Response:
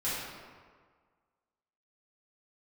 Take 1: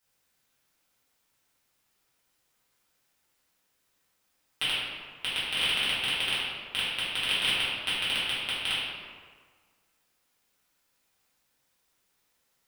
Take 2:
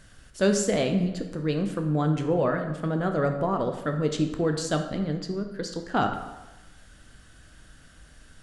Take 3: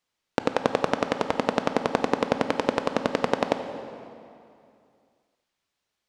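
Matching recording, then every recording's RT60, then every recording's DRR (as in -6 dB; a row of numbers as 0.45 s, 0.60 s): 1; 1.7 s, 1.1 s, 2.5 s; -11.5 dB, 4.5 dB, 8.0 dB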